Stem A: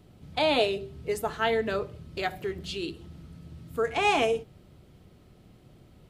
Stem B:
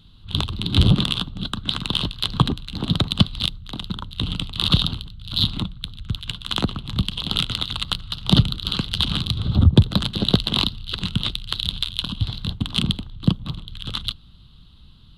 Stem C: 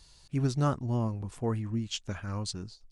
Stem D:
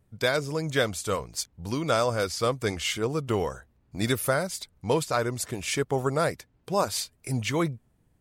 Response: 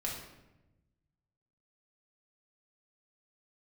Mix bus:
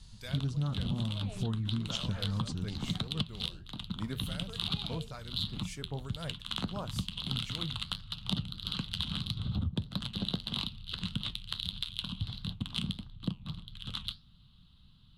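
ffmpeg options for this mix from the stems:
-filter_complex "[0:a]adelay=700,volume=-18.5dB[a];[1:a]lowshelf=f=310:g=-11,volume=-6dB[b];[2:a]volume=2dB[c];[3:a]acrossover=split=2100[d][e];[d]aeval=exprs='val(0)*(1-0.7/2+0.7/2*cos(2*PI*2.2*n/s))':c=same[f];[e]aeval=exprs='val(0)*(1-0.7/2-0.7/2*cos(2*PI*2.2*n/s))':c=same[g];[f][g]amix=inputs=2:normalize=0,volume=-10.5dB[h];[a][b][c][h]amix=inputs=4:normalize=0,flanger=delay=6.4:depth=6.8:regen=-70:speed=1.6:shape=triangular,lowshelf=f=260:t=q:w=1.5:g=8,acompressor=threshold=-29dB:ratio=10"

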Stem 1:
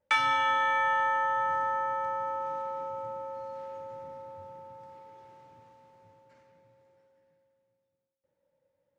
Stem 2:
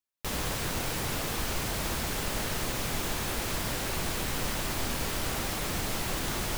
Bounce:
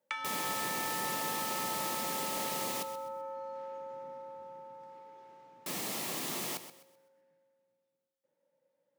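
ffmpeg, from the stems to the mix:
-filter_complex "[0:a]acompressor=threshold=-35dB:ratio=6,volume=-1.5dB[a];[1:a]highshelf=f=6.8k:g=5,bandreject=f=1.5k:w=5.4,volume=-5.5dB,asplit=3[b][c][d];[b]atrim=end=2.83,asetpts=PTS-STARTPTS,afade=t=out:st=2.826:d=0.004:c=hsin[e];[c]atrim=start=2.83:end=5.66,asetpts=PTS-STARTPTS,volume=0[f];[d]atrim=start=5.66,asetpts=PTS-STARTPTS,afade=t=in:d=0.004:c=hsin[g];[e][f][g]concat=n=3:v=0:a=1,asplit=2[h][i];[i]volume=-12dB,aecho=0:1:128|256|384|512|640:1|0.32|0.102|0.0328|0.0105[j];[a][h][j]amix=inputs=3:normalize=0,highpass=f=170:w=0.5412,highpass=f=170:w=1.3066"

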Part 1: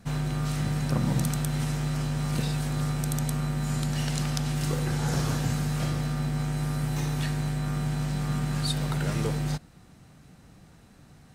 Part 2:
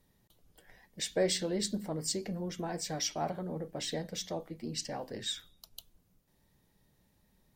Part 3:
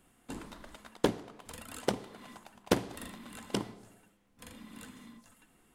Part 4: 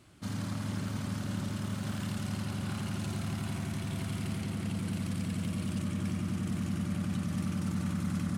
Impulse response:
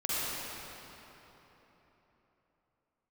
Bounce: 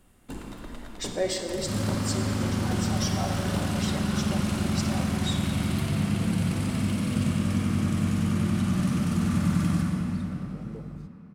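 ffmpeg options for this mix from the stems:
-filter_complex "[0:a]afwtdn=0.0316,adelay=1500,volume=-12dB,asplit=2[a][b];[b]volume=-21dB[c];[1:a]highpass=320,aecho=1:1:5.3:0.76,volume=-3.5dB,asplit=2[d][e];[e]volume=-10dB[f];[2:a]alimiter=limit=-23.5dB:level=0:latency=1:release=288,asoftclip=type=hard:threshold=-32.5dB,lowshelf=f=130:g=11.5,volume=-2dB,asplit=2[g][h];[h]volume=-5dB[i];[3:a]adelay=1450,volume=1dB,asplit=2[j][k];[k]volume=-3.5dB[l];[4:a]atrim=start_sample=2205[m];[c][f][i][l]amix=inputs=4:normalize=0[n];[n][m]afir=irnorm=-1:irlink=0[o];[a][d][g][j][o]amix=inputs=5:normalize=0"

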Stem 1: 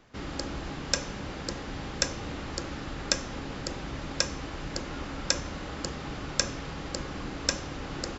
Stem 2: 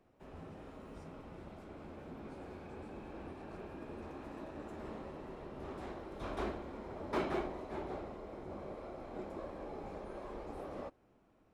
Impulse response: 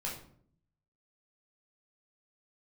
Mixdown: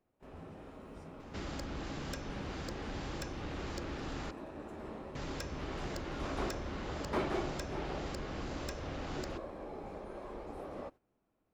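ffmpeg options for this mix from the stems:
-filter_complex "[0:a]acrossover=split=120|4700[a][b][c];[a]acompressor=threshold=-41dB:ratio=4[d];[b]acompressor=threshold=-40dB:ratio=4[e];[c]acompressor=threshold=-54dB:ratio=4[f];[d][e][f]amix=inputs=3:normalize=0,asoftclip=type=tanh:threshold=-32.5dB,adelay=1200,volume=0dB,asplit=3[g][h][i];[g]atrim=end=4.31,asetpts=PTS-STARTPTS,afade=t=out:st=4.306:d=0.004:c=hsin[j];[h]atrim=start=4.31:end=5.15,asetpts=PTS-STARTPTS,volume=0[k];[i]atrim=start=5.15,asetpts=PTS-STARTPTS,afade=t=in:d=0.004:c=hsin[l];[j][k][l]concat=n=3:v=0:a=1[m];[1:a]volume=0.5dB[n];[m][n]amix=inputs=2:normalize=0,agate=range=-11dB:threshold=-54dB:ratio=16:detection=peak"

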